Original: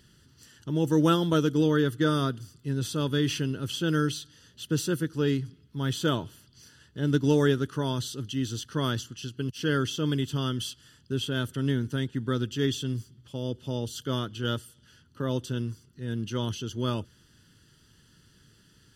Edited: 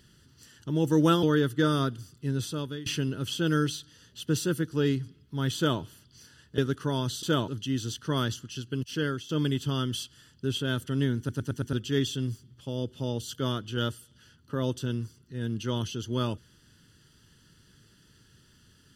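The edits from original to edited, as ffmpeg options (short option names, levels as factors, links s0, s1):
-filter_complex "[0:a]asplit=12[s0][s1][s2][s3][s4][s5][s6][s7][s8][s9][s10][s11];[s0]atrim=end=1.232[s12];[s1]atrim=start=1.648:end=3.28,asetpts=PTS-STARTPTS,afade=t=out:st=1.122:d=0.51:silence=0.1[s13];[s2]atrim=start=3.28:end=7.002,asetpts=PTS-STARTPTS,afade=t=in:d=0.004:c=hsin:silence=0.1[s14];[s3]atrim=start=7.498:end=8.152[s15];[s4]atrim=start=5.978:end=6.232[s16];[s5]atrim=start=8.148:end=9.96,asetpts=PTS-STARTPTS,afade=t=out:st=1.422:d=0.39:silence=0.199526[s17];[s6]atrim=start=9.96:end=11.962,asetpts=PTS-STARTPTS,afade=t=in:d=0.004:c=hsin:silence=0.199526[s18];[s7]atrim=start=11.848:end=11.962[s19];[s8]atrim=start=11.848:end=11.962[s20];[s9]atrim=start=11.848:end=11.962[s21];[s10]atrim=start=11.848:end=11.962[s22];[s11]atrim=start=12.398[s23];[s13][s14]concat=n=2:v=0:a=1[s24];[s12][s24]acrossfade=d=0.004:c1=hsin:c2=hsin[s25];[s25][s15]acrossfade=d=0.004:c1=hsin:c2=hsin[s26];[s26][s16]acrossfade=d=0.004:c1=hsin:c2=hsin[s27];[s17][s18]concat=n=2:v=0:a=1[s28];[s27][s28]acrossfade=d=0.004:c1=hsin:c2=hsin[s29];[s29][s19]acrossfade=d=0.004:c1=hsin:c2=hsin[s30];[s30][s20]acrossfade=d=0.004:c1=hsin:c2=hsin[s31];[s31][s21]acrossfade=d=0.004:c1=hsin:c2=hsin[s32];[s32][s22]acrossfade=d=0.004:c1=hsin:c2=hsin[s33];[s33][s23]acrossfade=d=0.004:c1=hsin:c2=hsin"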